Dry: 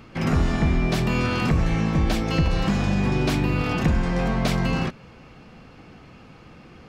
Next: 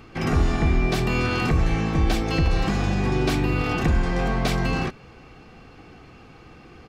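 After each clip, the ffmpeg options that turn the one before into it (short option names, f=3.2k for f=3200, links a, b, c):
-af "aecho=1:1:2.6:0.34"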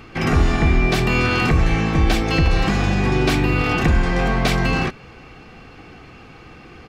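-af "equalizer=f=2.2k:t=o:w=1.5:g=3.5,volume=4dB"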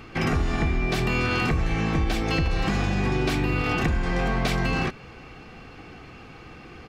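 -af "acompressor=threshold=-18dB:ratio=6,volume=-2dB"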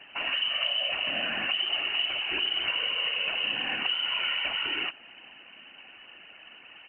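-af "lowpass=f=2.6k:t=q:w=0.5098,lowpass=f=2.6k:t=q:w=0.6013,lowpass=f=2.6k:t=q:w=0.9,lowpass=f=2.6k:t=q:w=2.563,afreqshift=-3000,afftfilt=real='hypot(re,im)*cos(2*PI*random(0))':imag='hypot(re,im)*sin(2*PI*random(1))':win_size=512:overlap=0.75"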